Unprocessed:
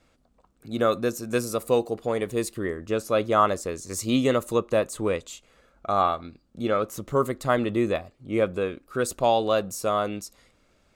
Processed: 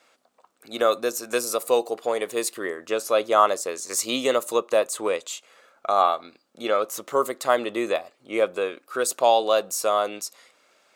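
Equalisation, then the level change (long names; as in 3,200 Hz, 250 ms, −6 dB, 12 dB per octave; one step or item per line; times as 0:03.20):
high-pass filter 580 Hz 12 dB per octave
dynamic equaliser 1,700 Hz, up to −6 dB, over −38 dBFS, Q 0.77
+7.0 dB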